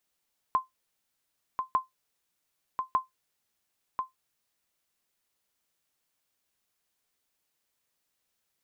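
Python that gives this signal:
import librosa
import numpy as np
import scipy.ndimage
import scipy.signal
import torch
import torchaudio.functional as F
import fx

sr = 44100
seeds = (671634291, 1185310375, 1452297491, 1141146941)

y = fx.sonar_ping(sr, hz=1040.0, decay_s=0.15, every_s=1.2, pings=3, echo_s=1.04, echo_db=-6.0, level_db=-16.0)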